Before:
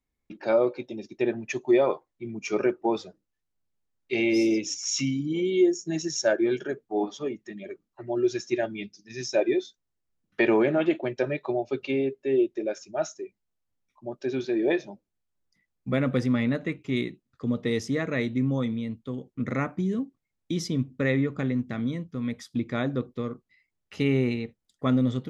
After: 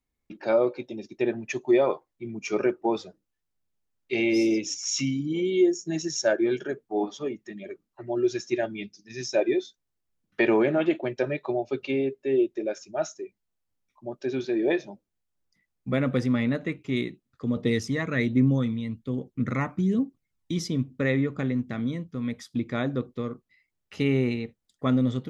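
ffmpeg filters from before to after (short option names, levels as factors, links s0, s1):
-filter_complex "[0:a]asettb=1/sr,asplit=3[s0][s1][s2];[s0]atrim=end=17.564[s3];[s1]atrim=start=17.56:end=20.59,asetpts=PTS-STARTPTS,afade=t=in:d=0.004:c=qsin,afade=t=out:st=3.026:d=0.004:c=qsin,aphaser=in_gain=1:out_gain=1:delay=1.1:decay=0.45:speed=1.2:type=triangular[s4];[s2]atrim=start=20.586[s5];[s3][s4]acrossfade=d=0.004:c1=hsin:c2=qsin[s6];[s6][s5]acrossfade=d=0.004:c1=qsin:c2=hsin"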